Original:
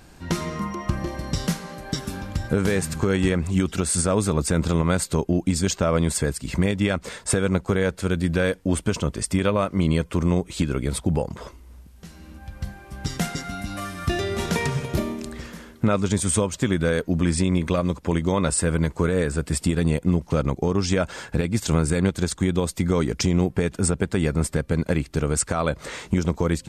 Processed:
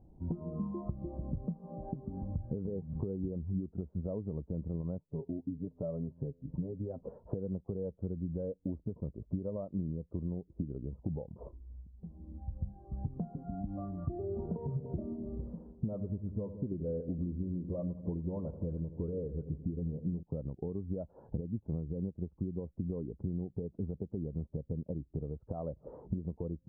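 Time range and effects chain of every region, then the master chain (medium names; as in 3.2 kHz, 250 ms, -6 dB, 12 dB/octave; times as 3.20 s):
4.98–7.01 s: flange 1.3 Hz, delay 6.5 ms, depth 1.4 ms, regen +20% + feedback comb 85 Hz, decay 1.5 s, mix 40%
14.67–20.23 s: phase dispersion highs, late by 61 ms, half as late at 1.9 kHz + filtered feedback delay 84 ms, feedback 62%, low-pass 2.2 kHz, level -11.5 dB
whole clip: inverse Chebyshev low-pass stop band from 2.9 kHz, stop band 60 dB; compression 10:1, threshold -32 dBFS; spectral contrast expander 1.5:1; trim -2 dB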